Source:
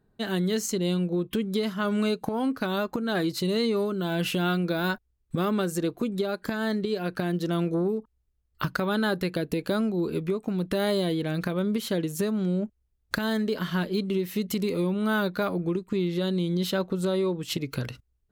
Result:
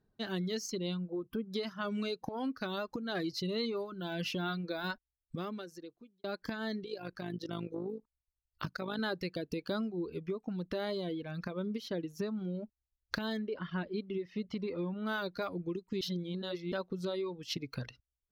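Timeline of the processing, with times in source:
0.97–1.51 spectral gain 1600–9900 Hz -12 dB
4.93–6.24 fade out
6.84–8.99 AM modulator 52 Hz, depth 45%
9.88–12.55 high shelf 2700 Hz -6 dB
13.39–15.07 LPF 2600 Hz
16.01–16.72 reverse
whole clip: reverb removal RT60 1.6 s; resonant high shelf 6700 Hz -7 dB, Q 3; gain -8 dB

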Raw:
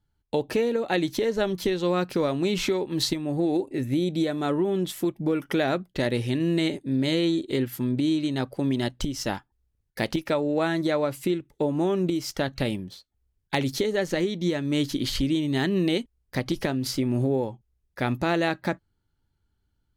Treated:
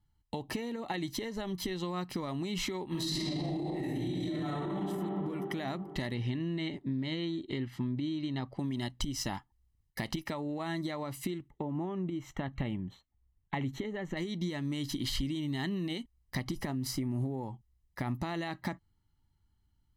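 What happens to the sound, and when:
2.88–4.79 reverb throw, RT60 2.3 s, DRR -11.5 dB
6.14–8.59 LPF 4000 Hz
11.48–14.17 running mean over 9 samples
16.41–18.18 dynamic EQ 3400 Hz, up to -7 dB, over -48 dBFS, Q 1.2
whole clip: limiter -17.5 dBFS; compressor, threshold -29 dBFS; comb 1 ms, depth 58%; gain -3 dB

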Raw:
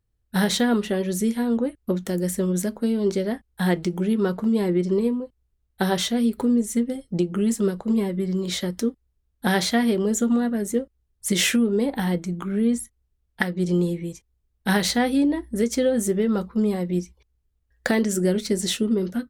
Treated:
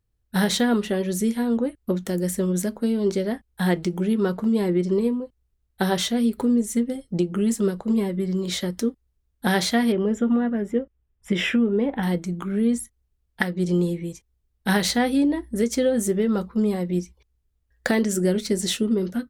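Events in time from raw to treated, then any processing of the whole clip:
9.92–12.03 polynomial smoothing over 25 samples

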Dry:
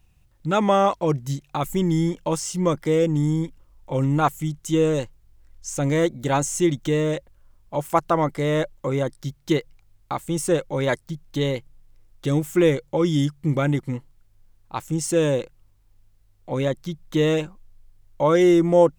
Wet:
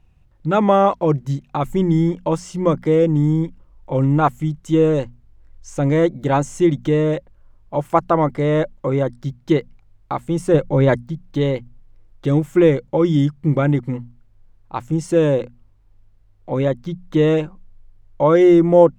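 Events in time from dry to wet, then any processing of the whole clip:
10.54–11.04 low shelf 340 Hz +8 dB
whole clip: LPF 1500 Hz 6 dB/oct; notches 60/120/180/240 Hz; gain +5 dB

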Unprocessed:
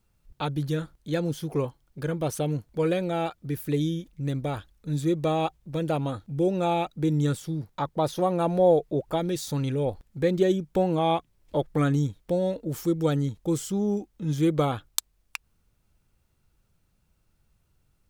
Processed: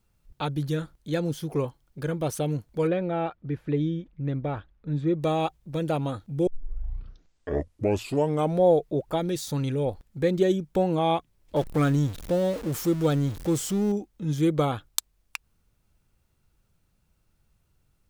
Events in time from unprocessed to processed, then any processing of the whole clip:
2.87–5.22 LPF 2200 Hz
6.47 tape start 2.16 s
11.56–13.92 zero-crossing step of -34 dBFS

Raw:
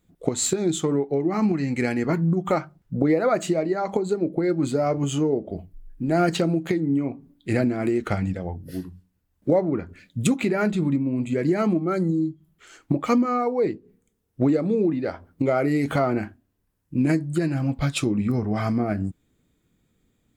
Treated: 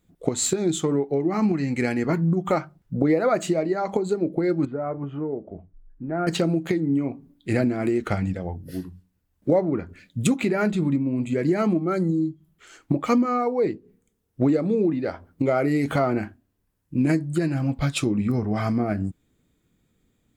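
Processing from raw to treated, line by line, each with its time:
4.65–6.27 ladder low-pass 1900 Hz, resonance 30%

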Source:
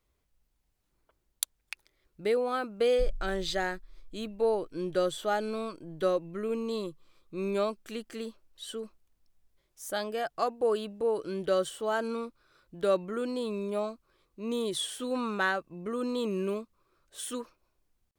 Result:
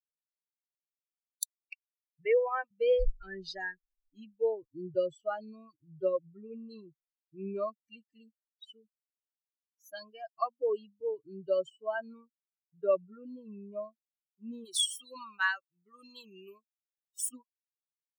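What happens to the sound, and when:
2.25–2.71 speaker cabinet 330–3500 Hz, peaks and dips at 550 Hz +6 dB, 880 Hz +9 dB, 1700 Hz +7 dB, 2500 Hz +5 dB
12.21–13.57 air absorption 140 m
14.65–17.29 tilt +3 dB/oct
whole clip: per-bin expansion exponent 3; notch 3900 Hz, Q 14; comb 1.8 ms, depth 51%

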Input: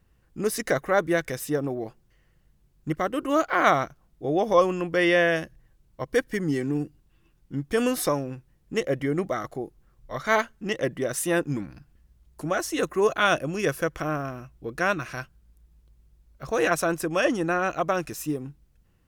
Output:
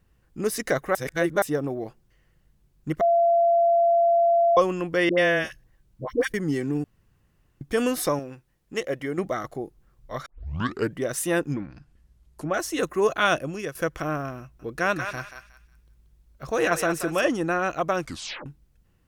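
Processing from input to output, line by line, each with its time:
0.95–1.42 reverse
3.01–4.57 bleep 682 Hz -16 dBFS
5.09–6.34 dispersion highs, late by 87 ms, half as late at 730 Hz
6.84–7.61 room tone
8.19–9.18 low shelf 300 Hz -9 dB
10.26 tape start 0.69 s
11.53–12.54 treble ducked by the level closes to 2500 Hz, closed at -27 dBFS
13.26–13.75 fade out equal-power, to -13.5 dB
14.41–17.3 thinning echo 0.182 s, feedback 27%, high-pass 950 Hz, level -6 dB
18.02 tape stop 0.44 s

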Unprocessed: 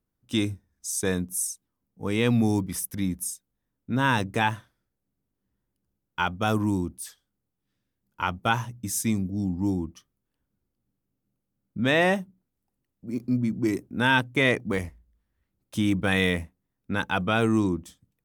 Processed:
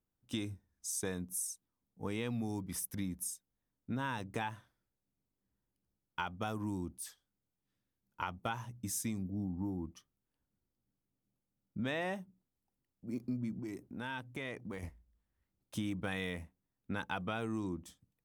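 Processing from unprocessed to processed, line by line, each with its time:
9.23–9.85 band shelf 4400 Hz -14 dB 2.3 oct
13.59–14.83 compressor 3:1, threshold -35 dBFS
whole clip: bell 850 Hz +2.5 dB; compressor, threshold -27 dBFS; gain -7 dB

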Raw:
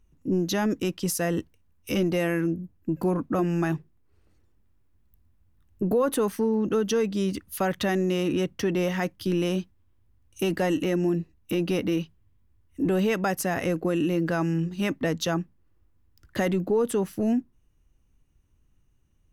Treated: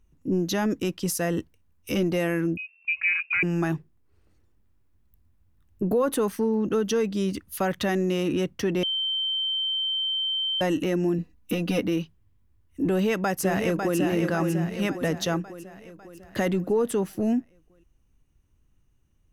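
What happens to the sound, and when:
2.57–3.43 inverted band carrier 2700 Hz
8.83–10.61 bleep 3110 Hz -24 dBFS
11.18–11.81 comb 4.1 ms, depth 82%
12.88–13.98 echo throw 0.55 s, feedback 55%, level -5 dB

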